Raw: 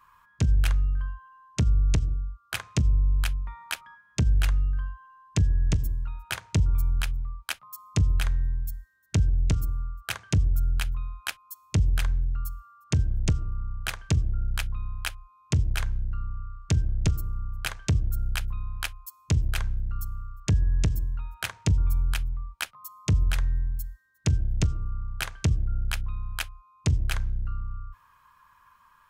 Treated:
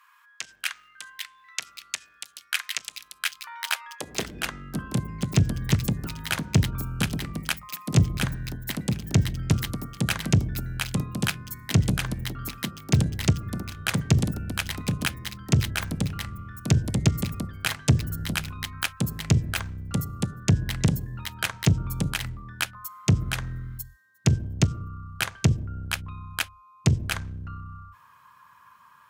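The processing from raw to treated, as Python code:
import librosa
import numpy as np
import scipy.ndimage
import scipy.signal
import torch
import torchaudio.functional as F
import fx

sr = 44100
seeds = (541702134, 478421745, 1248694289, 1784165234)

y = fx.cheby_harmonics(x, sr, harmonics=(6,), levels_db=(-28,), full_scale_db=-12.5)
y = fx.filter_sweep_highpass(y, sr, from_hz=1800.0, to_hz=130.0, start_s=3.13, end_s=5.05, q=1.2)
y = fx.echo_pitch(y, sr, ms=685, semitones=4, count=3, db_per_echo=-6.0)
y = y * 10.0 ** (4.5 / 20.0)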